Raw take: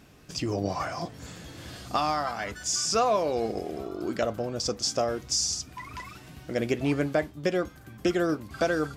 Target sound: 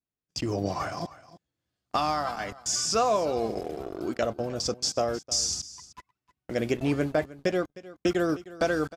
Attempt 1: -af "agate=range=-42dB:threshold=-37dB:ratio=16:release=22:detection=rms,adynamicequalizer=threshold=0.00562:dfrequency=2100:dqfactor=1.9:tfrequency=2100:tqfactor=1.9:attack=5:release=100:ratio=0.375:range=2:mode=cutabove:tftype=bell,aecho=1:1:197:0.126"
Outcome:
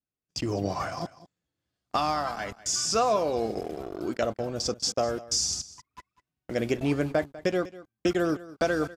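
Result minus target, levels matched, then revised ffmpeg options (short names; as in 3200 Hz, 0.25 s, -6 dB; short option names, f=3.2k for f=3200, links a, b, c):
echo 0.112 s early
-af "agate=range=-42dB:threshold=-37dB:ratio=16:release=22:detection=rms,adynamicequalizer=threshold=0.00562:dfrequency=2100:dqfactor=1.9:tfrequency=2100:tqfactor=1.9:attack=5:release=100:ratio=0.375:range=2:mode=cutabove:tftype=bell,aecho=1:1:309:0.126"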